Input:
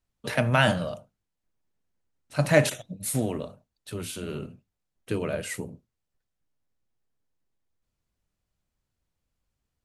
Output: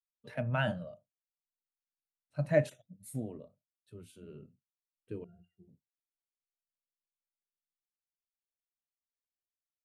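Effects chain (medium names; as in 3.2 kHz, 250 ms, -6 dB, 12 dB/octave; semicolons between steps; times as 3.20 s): 5.24–5.68 s: pitch-class resonator F, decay 0.15 s; spectral contrast expander 1.5:1; trim -7.5 dB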